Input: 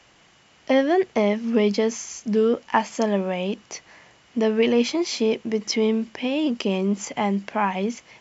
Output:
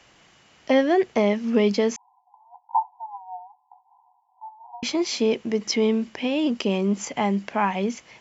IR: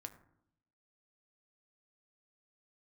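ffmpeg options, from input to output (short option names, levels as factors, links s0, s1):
-filter_complex "[0:a]asettb=1/sr,asplit=3[s0][s1][s2];[s0]atrim=end=1.964[s3];[s1]atrim=start=1.96:end=4.83,asetpts=PTS-STARTPTS,afade=t=in:d=0.004:c=qsin,afade=t=out:st=2.866:d=0.004:c=qsin,asuperpass=centerf=860:order=20:qfactor=2.8[s4];[s2]atrim=start=4.826[s5];[s3][s4]acrossfade=d=0.004:c1=hsin:c2=qsin[s6];[s6][s5]acrossfade=d=0.004:c1=qsin:c2=hsin"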